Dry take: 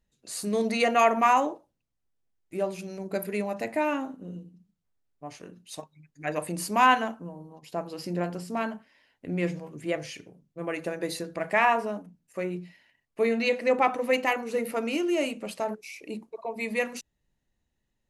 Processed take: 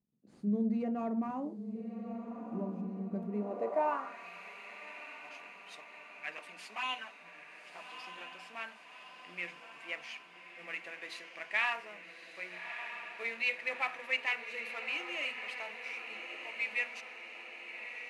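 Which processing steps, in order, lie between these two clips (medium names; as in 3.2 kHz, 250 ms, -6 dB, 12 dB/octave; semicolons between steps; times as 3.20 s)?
CVSD coder 64 kbps; 6.37–8.32 s: touch-sensitive flanger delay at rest 10.8 ms, full sweep at -17 dBFS; on a send: echo that smears into a reverb 1249 ms, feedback 63%, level -8 dB; on the sum: band-pass sweep 200 Hz -> 2.4 kHz, 3.28–4.26 s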